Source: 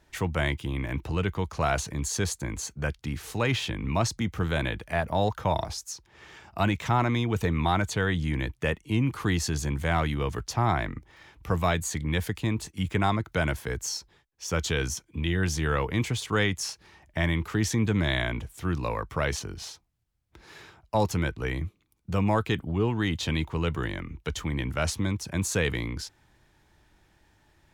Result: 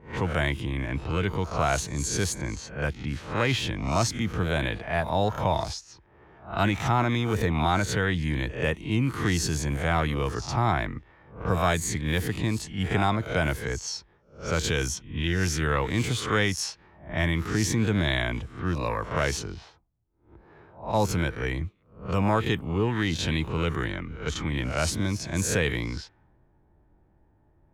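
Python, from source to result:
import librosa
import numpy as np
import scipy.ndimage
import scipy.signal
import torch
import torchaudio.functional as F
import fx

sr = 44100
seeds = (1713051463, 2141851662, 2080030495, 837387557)

y = fx.spec_swells(x, sr, rise_s=0.44)
y = fx.env_lowpass(y, sr, base_hz=680.0, full_db=-23.5)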